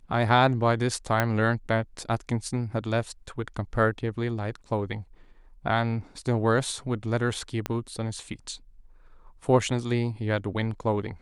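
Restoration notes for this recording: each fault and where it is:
1.20 s: pop -9 dBFS
7.66 s: pop -13 dBFS

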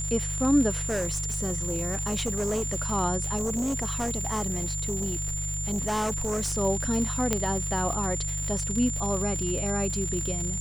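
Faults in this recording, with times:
crackle 150 per s -30 dBFS
hum 50 Hz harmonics 3 -33 dBFS
whine 7.2 kHz -31 dBFS
0.82–2.76 s: clipped -24 dBFS
3.36–6.54 s: clipped -24.5 dBFS
7.33 s: pop -9 dBFS

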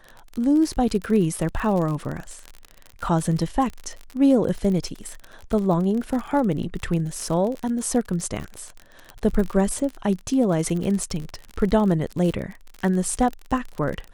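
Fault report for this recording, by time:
crackle 44 per s -27 dBFS

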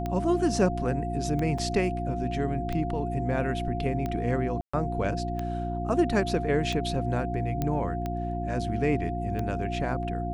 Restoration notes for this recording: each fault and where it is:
hum 60 Hz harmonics 6 -32 dBFS
tick 45 rpm -19 dBFS
whine 700 Hz -33 dBFS
1.58 s: dropout 4.6 ms
4.61–4.74 s: dropout 125 ms
7.62 s: pop -15 dBFS

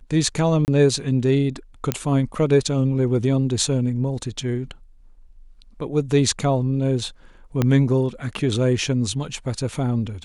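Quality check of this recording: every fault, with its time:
0.65–0.68 s: dropout 29 ms
1.92 s: pop -5 dBFS
7.62 s: pop -7 dBFS

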